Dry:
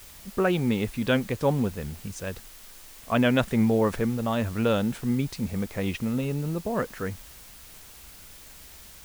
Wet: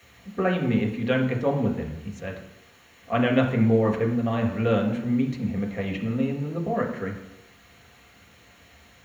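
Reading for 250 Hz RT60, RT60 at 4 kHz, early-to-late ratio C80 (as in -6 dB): 0.75 s, 0.65 s, 10.5 dB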